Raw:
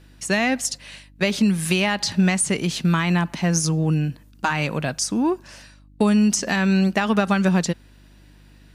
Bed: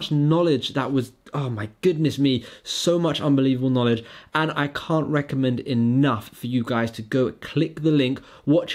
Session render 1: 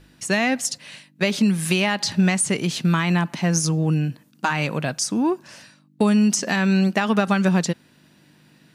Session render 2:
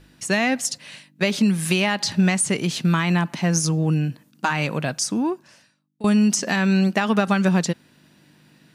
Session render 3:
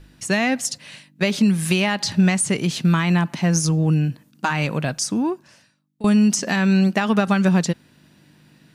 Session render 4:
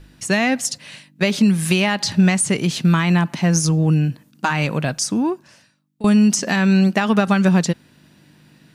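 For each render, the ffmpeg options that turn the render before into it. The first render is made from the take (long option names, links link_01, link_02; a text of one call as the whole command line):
ffmpeg -i in.wav -af "bandreject=frequency=50:width_type=h:width=4,bandreject=frequency=100:width_type=h:width=4" out.wav
ffmpeg -i in.wav -filter_complex "[0:a]asplit=2[link_01][link_02];[link_01]atrim=end=6.04,asetpts=PTS-STARTPTS,afade=type=out:start_time=5.13:duration=0.91:curve=qua:silence=0.0944061[link_03];[link_02]atrim=start=6.04,asetpts=PTS-STARTPTS,afade=type=in:duration=0.004:curve=hsin:silence=0.0944061[link_04];[link_03][link_04]concat=n=2:v=0:a=1" out.wav
ffmpeg -i in.wav -af "lowshelf=frequency=100:gain=9" out.wav
ffmpeg -i in.wav -af "volume=2dB" out.wav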